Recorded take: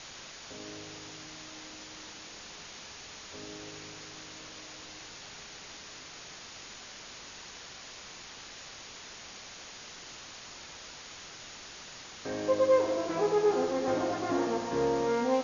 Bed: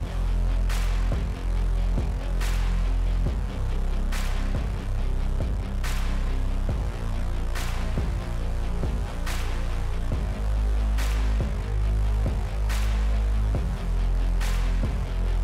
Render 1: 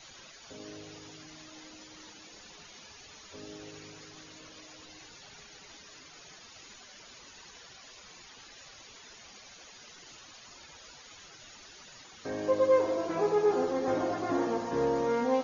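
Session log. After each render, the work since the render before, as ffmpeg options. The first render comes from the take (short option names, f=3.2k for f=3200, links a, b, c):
-af "afftdn=nr=12:nf=-47"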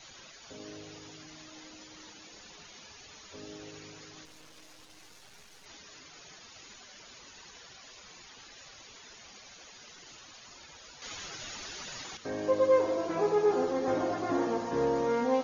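-filter_complex "[0:a]asettb=1/sr,asplit=3[a][b][c];[a]atrim=end=4.254[d];[b]atrim=start=4.25:end=5.66,asetpts=PTS-STARTPTS,afade=t=in:d=0.004:c=qsin,afade=t=out:st=1.406:d=0.004:c=qsin,aeval=exprs='max(val(0),0)':c=same[e];[c]atrim=start=5.656[f];[d][e]acrossfade=d=0.004:c1=hsin:c2=qsin[g];[g][f]acrossfade=d=0.004:c1=qsin:c2=hsin,asplit=3[h][i][j];[h]atrim=end=11.022[k];[i]atrim=start=11.018:end=12.172,asetpts=PTS-STARTPTS,volume=9dB[l];[j]atrim=start=12.168[m];[k][l]acrossfade=d=0.004:c1=hsin:c2=hsin[n];[n][m]acrossfade=d=0.004:c1=hsin:c2=hsin"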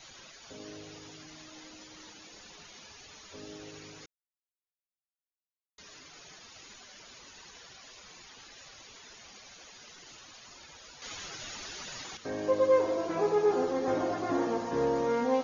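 -filter_complex "[0:a]asplit=3[a][b][c];[a]atrim=end=4.06,asetpts=PTS-STARTPTS,afade=t=out:st=4.056:d=0.004:c=hsin[d];[b]atrim=start=4.06:end=5.78,asetpts=PTS-STARTPTS,volume=0[e];[c]atrim=start=5.78,asetpts=PTS-STARTPTS,afade=t=in:d=0.004:c=hsin[f];[d][e][f]concat=n=3:v=0:a=1"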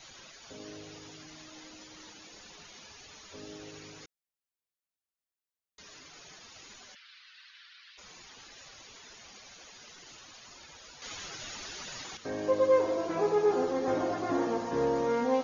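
-filter_complex "[0:a]asplit=3[a][b][c];[a]afade=t=out:st=6.94:d=0.02[d];[b]asuperpass=centerf=2500:order=8:qfactor=0.77,afade=t=in:st=6.94:d=0.02,afade=t=out:st=7.97:d=0.02[e];[c]afade=t=in:st=7.97:d=0.02[f];[d][e][f]amix=inputs=3:normalize=0"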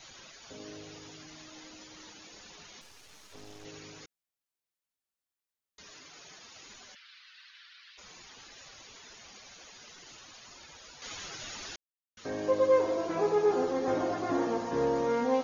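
-filter_complex "[0:a]asettb=1/sr,asplit=3[a][b][c];[a]atrim=end=2.814[d];[b]atrim=start=2.81:end=3.65,asetpts=PTS-STARTPTS,afade=t=in:d=0.004:c=qsin,afade=t=out:st=0.836:d=0.004:c=qsin,aeval=exprs='max(val(0),0)':c=same[e];[c]atrim=start=3.646[f];[d][e]acrossfade=d=0.004:c1=hsin:c2=qsin[g];[g][f]acrossfade=d=0.004:c1=qsin:c2=hsin,asettb=1/sr,asplit=3[h][i][j];[h]atrim=end=5.924[k];[i]atrim=start=5.92:end=6.65,asetpts=PTS-STARTPTS,afade=t=in:d=0.004:c=qsin,afade=t=out:st=0.726:d=0.004:c=qsin,lowshelf=f=84:g=-9[l];[j]atrim=start=6.646[m];[k][l]acrossfade=d=0.004:c1=hsin:c2=qsin[n];[n][m]acrossfade=d=0.004:c1=qsin:c2=hsin,asplit=3[o][p][q];[o]atrim=end=11.76,asetpts=PTS-STARTPTS,afade=t=out:st=11.756:d=0.004:c=hsin[r];[p]atrim=start=11.76:end=12.17,asetpts=PTS-STARTPTS,volume=0[s];[q]atrim=start=12.17,asetpts=PTS-STARTPTS,afade=t=in:d=0.004:c=hsin[t];[r][s][t]concat=n=3:v=0:a=1"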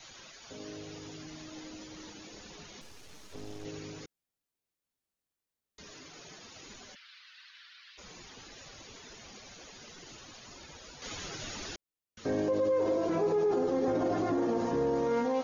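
-filter_complex "[0:a]acrossover=split=540|870[a][b][c];[a]dynaudnorm=f=380:g=5:m=7.5dB[d];[d][b][c]amix=inputs=3:normalize=0,alimiter=limit=-22dB:level=0:latency=1:release=37"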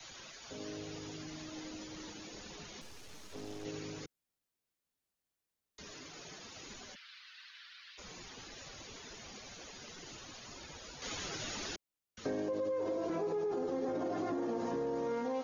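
-filter_complex "[0:a]acrossover=split=150|340|1300[a][b][c][d];[a]alimiter=level_in=23dB:limit=-24dB:level=0:latency=1:release=260,volume=-23dB[e];[e][b][c][d]amix=inputs=4:normalize=0,acompressor=threshold=-33dB:ratio=6"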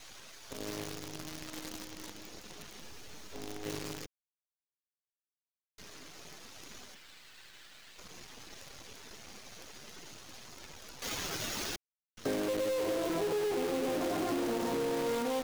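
-filter_complex "[0:a]asplit=2[a][b];[b]volume=31.5dB,asoftclip=hard,volume=-31.5dB,volume=-7dB[c];[a][c]amix=inputs=2:normalize=0,acrusher=bits=7:dc=4:mix=0:aa=0.000001"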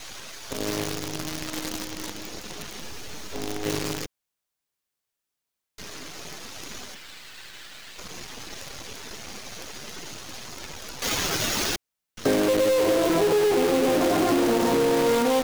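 -af "volume=11.5dB"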